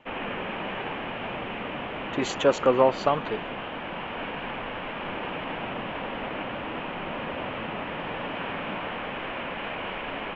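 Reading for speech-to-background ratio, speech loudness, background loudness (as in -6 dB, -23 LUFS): 8.0 dB, -25.0 LUFS, -33.0 LUFS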